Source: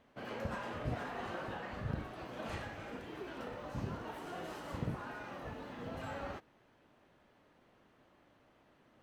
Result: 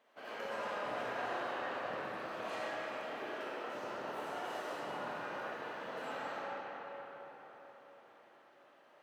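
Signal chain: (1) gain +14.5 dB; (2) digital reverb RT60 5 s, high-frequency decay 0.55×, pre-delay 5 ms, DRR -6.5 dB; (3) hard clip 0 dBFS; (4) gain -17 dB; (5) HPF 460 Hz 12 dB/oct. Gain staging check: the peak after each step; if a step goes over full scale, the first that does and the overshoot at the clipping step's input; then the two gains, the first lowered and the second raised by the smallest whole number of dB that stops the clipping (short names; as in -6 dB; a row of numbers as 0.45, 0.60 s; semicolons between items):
-8.5, -5.0, -5.0, -22.0, -27.5 dBFS; no overload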